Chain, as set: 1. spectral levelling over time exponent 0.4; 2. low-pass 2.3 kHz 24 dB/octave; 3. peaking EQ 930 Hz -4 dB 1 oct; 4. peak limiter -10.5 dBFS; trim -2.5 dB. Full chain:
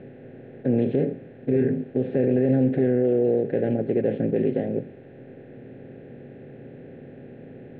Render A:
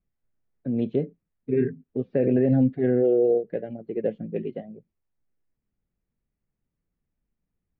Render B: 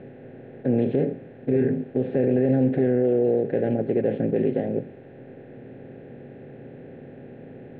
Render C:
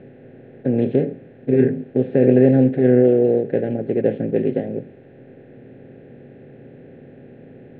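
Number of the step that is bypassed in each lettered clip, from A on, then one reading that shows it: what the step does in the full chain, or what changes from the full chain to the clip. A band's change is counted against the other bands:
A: 1, crest factor change +2.0 dB; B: 3, 1 kHz band +2.5 dB; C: 4, mean gain reduction 1.5 dB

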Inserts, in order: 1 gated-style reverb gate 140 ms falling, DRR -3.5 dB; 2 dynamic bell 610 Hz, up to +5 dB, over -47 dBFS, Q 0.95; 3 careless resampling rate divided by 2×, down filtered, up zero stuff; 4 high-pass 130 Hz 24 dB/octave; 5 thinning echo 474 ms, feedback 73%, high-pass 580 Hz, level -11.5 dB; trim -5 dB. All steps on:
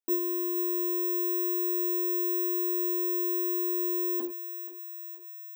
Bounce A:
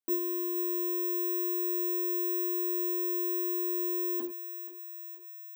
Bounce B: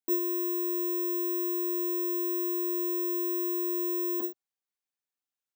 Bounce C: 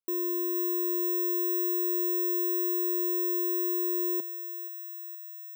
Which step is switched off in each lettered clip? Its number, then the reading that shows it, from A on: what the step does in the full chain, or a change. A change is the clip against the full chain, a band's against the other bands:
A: 2, loudness change -2.0 LU; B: 5, 2 kHz band -3.0 dB; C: 1, crest factor change -5.0 dB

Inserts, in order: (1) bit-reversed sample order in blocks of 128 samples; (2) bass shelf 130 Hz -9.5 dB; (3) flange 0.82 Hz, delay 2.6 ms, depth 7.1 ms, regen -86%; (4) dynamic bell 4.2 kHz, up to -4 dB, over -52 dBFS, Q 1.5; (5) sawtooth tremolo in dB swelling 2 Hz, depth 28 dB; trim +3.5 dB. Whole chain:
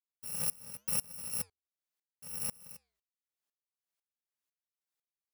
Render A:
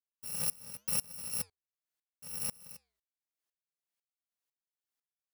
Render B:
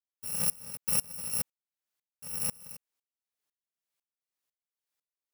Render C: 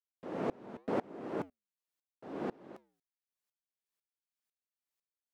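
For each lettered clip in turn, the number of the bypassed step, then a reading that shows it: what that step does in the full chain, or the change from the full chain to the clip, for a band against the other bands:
4, 4 kHz band +2.5 dB; 3, loudness change +4.5 LU; 1, 4 kHz band -26.0 dB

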